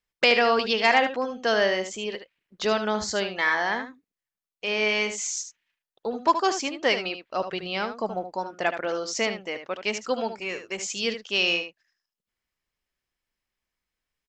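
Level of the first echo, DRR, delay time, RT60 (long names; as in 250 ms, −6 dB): −9.5 dB, no reverb audible, 75 ms, no reverb audible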